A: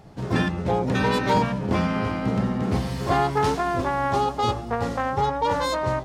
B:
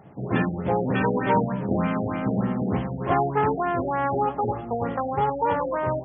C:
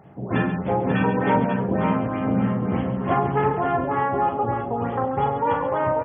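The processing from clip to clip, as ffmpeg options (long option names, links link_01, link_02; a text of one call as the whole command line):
ffmpeg -i in.wav -af "highpass=110,afftfilt=real='re*lt(b*sr/1024,760*pow(3500/760,0.5+0.5*sin(2*PI*3.3*pts/sr)))':imag='im*lt(b*sr/1024,760*pow(3500/760,0.5+0.5*sin(2*PI*3.3*pts/sr)))':win_size=1024:overlap=0.75" out.wav
ffmpeg -i in.wav -af "aecho=1:1:42|99|137|540:0.473|0.141|0.355|0.447" out.wav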